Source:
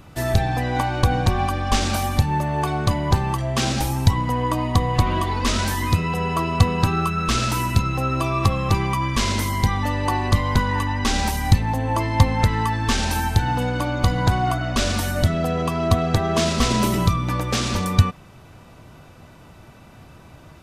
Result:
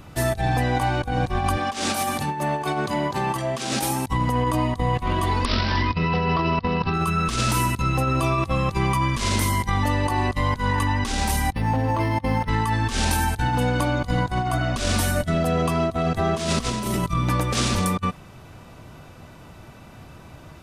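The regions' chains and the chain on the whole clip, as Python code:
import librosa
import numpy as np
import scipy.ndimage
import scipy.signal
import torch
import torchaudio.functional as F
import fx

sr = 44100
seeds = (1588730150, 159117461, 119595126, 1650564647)

y = fx.chain(x, sr, fx.highpass(hz=210.0, slope=12),
    fx.over_compress(threshold_db=-26.0, ratio=-0.5), at=(1.57, 4.07))
y = fx.chain(y, sr, fx.over_compress(threshold_db=-22.0, ratio=-0.5),
    fx.resample_bad(factor=4, down='none', up='filtered'), at=(5.45, 6.94))
y = fx.chain(y, sr, fx.highpass(hz=63.0, slope=12),
    fx.resample_linear(factor=6), at=(11.52, 12.49))
y = fx.dynamic_eq(y, sr, hz=9400.0, q=2.6, threshold_db=-51.0, ratio=4.0, max_db=6)
y = fx.over_compress(y, sr, threshold_db=-22.0, ratio=-0.5)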